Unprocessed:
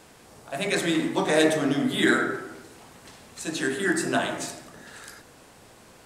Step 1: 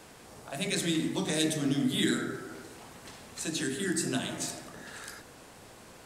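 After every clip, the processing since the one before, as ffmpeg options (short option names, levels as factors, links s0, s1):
-filter_complex "[0:a]acrossover=split=280|3000[s0][s1][s2];[s1]acompressor=threshold=0.01:ratio=4[s3];[s0][s3][s2]amix=inputs=3:normalize=0"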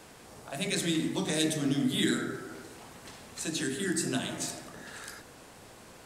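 -af anull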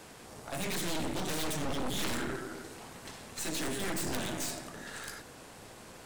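-af "aeval=exprs='0.188*(cos(1*acos(clip(val(0)/0.188,-1,1)))-cos(1*PI/2))+0.0596*(cos(6*acos(clip(val(0)/0.188,-1,1)))-cos(6*PI/2))':c=same,aeval=exprs='clip(val(0),-1,0.0335)':c=same,volume=1.12"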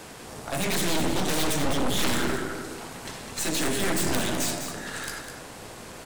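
-af "aecho=1:1:203:0.376,volume=2.51"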